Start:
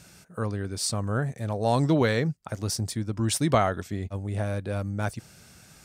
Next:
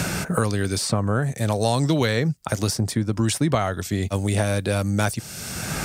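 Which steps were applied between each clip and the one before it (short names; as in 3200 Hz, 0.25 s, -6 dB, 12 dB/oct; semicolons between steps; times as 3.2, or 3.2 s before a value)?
high shelf 5000 Hz +5 dB; three-band squash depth 100%; gain +4.5 dB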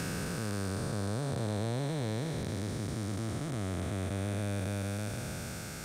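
time blur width 1.15 s; gain -8.5 dB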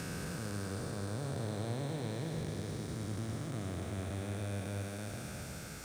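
on a send at -13 dB: reverb RT60 0.60 s, pre-delay 62 ms; on the sum: lo-fi delay 0.107 s, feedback 80%, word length 9-bit, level -10 dB; gain -5.5 dB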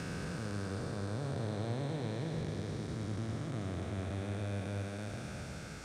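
air absorption 64 m; gain +1 dB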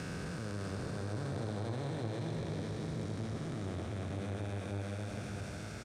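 on a send: echo 0.61 s -6 dB; on the sum: core saturation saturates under 350 Hz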